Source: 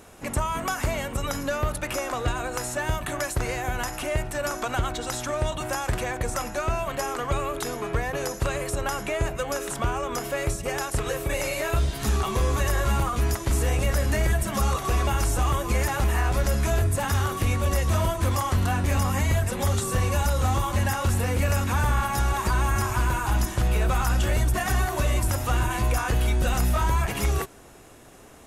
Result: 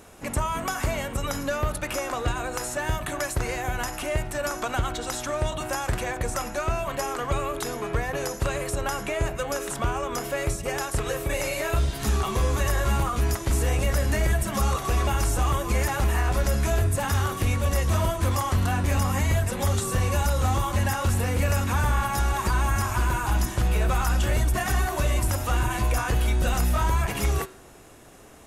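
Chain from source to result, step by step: de-hum 125.1 Hz, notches 37

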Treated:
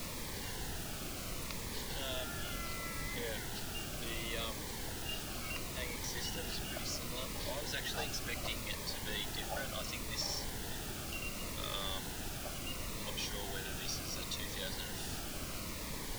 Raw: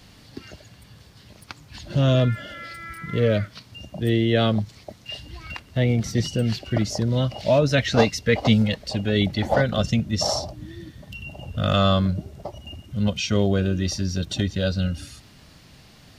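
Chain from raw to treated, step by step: HPF 940 Hz 12 dB/oct; compressor 2:1, threshold -41 dBFS, peak gain reduction 11.5 dB; added noise pink -38 dBFS; cascading phaser falling 0.7 Hz; gain -3 dB

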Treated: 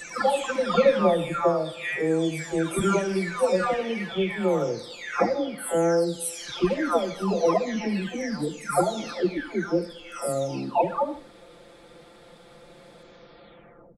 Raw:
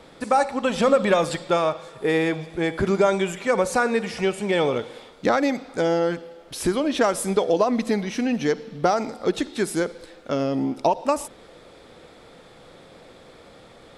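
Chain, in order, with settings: spectral delay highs early, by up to 0.944 s; on a send: feedback echo 79 ms, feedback 32%, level -16.5 dB

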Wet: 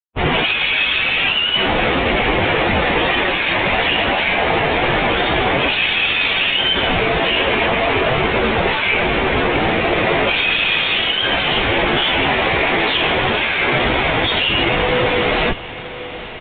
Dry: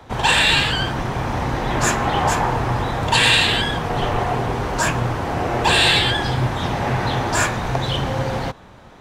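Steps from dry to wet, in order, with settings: steep high-pass 360 Hz 48 dB/oct; resonant high shelf 1800 Hz +11 dB, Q 3; in parallel at -1 dB: compressor 4:1, threshold -13 dBFS, peak gain reduction 14 dB; on the sum: soft clip 0 dBFS, distortion -10 dB; wide varispeed 0.933×; Schmitt trigger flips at -16 dBFS; plain phase-vocoder stretch 1.7×; on a send: diffused feedback echo 0.905 s, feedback 47%, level -14 dB; on the sum: downsampling 8000 Hz; gain -3 dB

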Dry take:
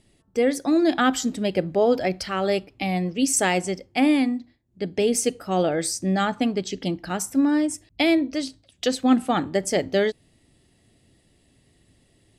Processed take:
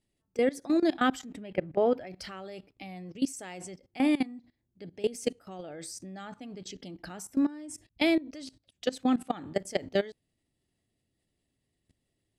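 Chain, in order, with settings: 1.19–2.07 resonant high shelf 3300 Hz -9 dB, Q 1.5; level quantiser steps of 19 dB; gain -4 dB

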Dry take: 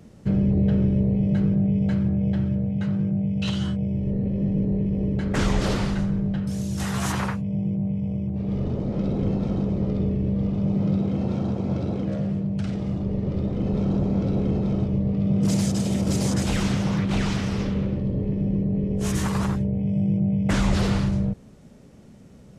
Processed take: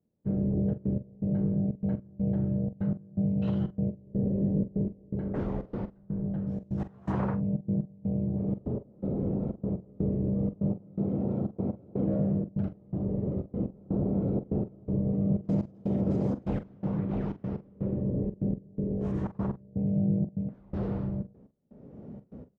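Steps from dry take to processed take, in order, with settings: tilt -3.5 dB/oct; AGC; band-pass 520 Hz, Q 0.76; step gate "..xxxx.x" 123 bpm -24 dB; doubler 44 ms -12 dB; gain -8.5 dB

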